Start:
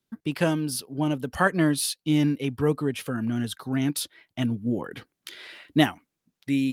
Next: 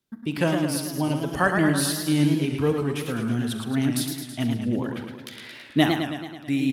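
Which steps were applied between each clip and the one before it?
early reflections 42 ms -15 dB, 68 ms -14 dB; warbling echo 0.109 s, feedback 62%, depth 142 cents, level -5.5 dB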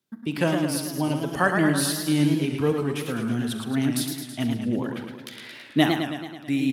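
HPF 110 Hz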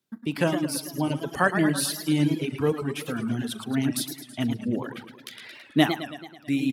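reverb removal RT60 0.92 s

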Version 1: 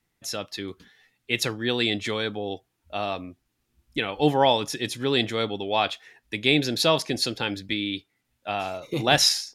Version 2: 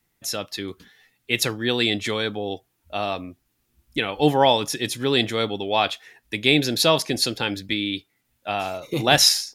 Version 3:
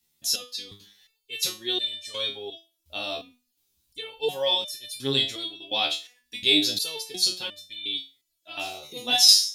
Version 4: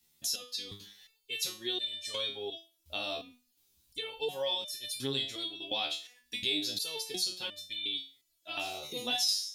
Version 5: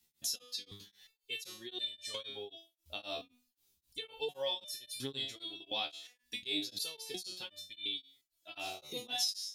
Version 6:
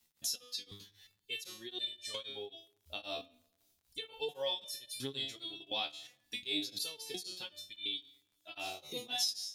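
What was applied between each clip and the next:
high shelf 12000 Hz +11.5 dB; gain +2.5 dB
resonant high shelf 2600 Hz +10.5 dB, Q 1.5; stepped resonator 2.8 Hz 75–600 Hz
compressor 2.5:1, threshold -37 dBFS, peak gain reduction 17 dB; gain +1.5 dB
beating tremolo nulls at 3.8 Hz; gain -2 dB
crackle 61/s -60 dBFS; on a send at -21 dB: reverb RT60 1.1 s, pre-delay 6 ms

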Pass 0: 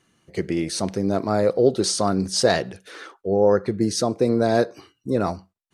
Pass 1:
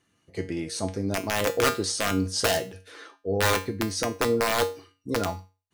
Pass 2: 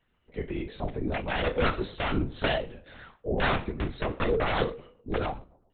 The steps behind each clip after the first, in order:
wrapped overs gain 10 dB; resonator 94 Hz, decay 0.31 s, harmonics odd, mix 80%; gain +4.5 dB
darkening echo 0.126 s, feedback 49%, low-pass 930 Hz, level -22 dB; LPC vocoder at 8 kHz whisper; gain -2 dB

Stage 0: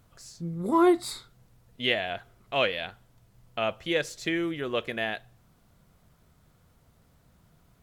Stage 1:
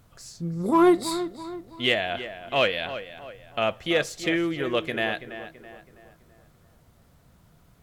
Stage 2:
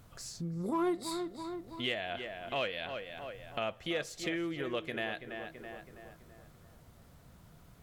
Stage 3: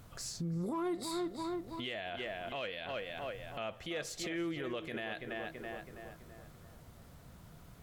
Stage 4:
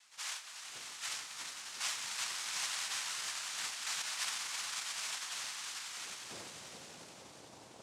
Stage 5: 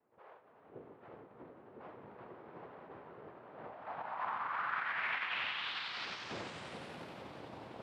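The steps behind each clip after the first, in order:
in parallel at -6 dB: overloaded stage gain 19 dB; on the sum: tape echo 0.329 s, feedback 48%, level -10.5 dB, low-pass 2400 Hz
compressor 2:1, threshold -41 dBFS, peak gain reduction 14.5 dB
limiter -32.5 dBFS, peak gain reduction 10.5 dB; gain +2.5 dB
high-pass sweep 2900 Hz -> 390 Hz, 5.8–6.48; swelling echo 90 ms, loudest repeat 5, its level -10 dB; noise vocoder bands 2
high shelf 11000 Hz +11.5 dB; low-pass sweep 440 Hz -> 16000 Hz, 3.41–7.34; air absorption 430 m; gain +8.5 dB

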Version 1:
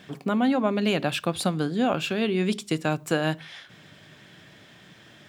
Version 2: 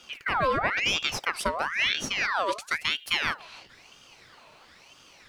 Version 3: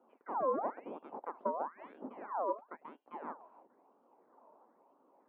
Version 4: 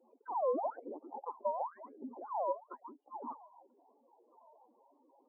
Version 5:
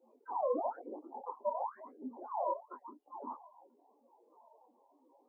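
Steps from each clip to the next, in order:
ring modulator with a swept carrier 1900 Hz, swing 60%, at 1 Hz
elliptic band-pass 240–970 Hz, stop band 80 dB; gain -5 dB
spectral contrast raised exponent 3.3; gain +1 dB
detuned doubles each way 40 cents; gain +3.5 dB

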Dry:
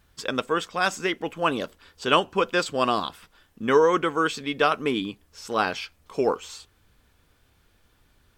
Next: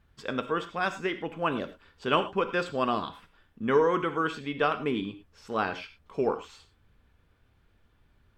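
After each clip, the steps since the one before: tone controls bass +4 dB, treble -12 dB; non-linear reverb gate 0.13 s flat, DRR 9.5 dB; gain -5 dB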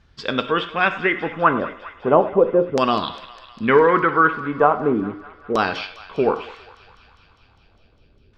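LFO low-pass saw down 0.36 Hz 410–5700 Hz; thinning echo 0.202 s, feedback 79%, high-pass 830 Hz, level -16 dB; gain +8 dB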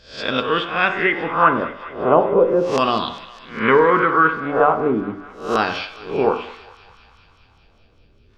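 spectral swells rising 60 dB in 0.44 s; de-hum 48.4 Hz, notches 35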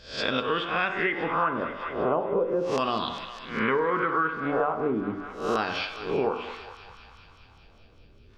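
compressor 4:1, threshold -24 dBFS, peak gain reduction 13.5 dB

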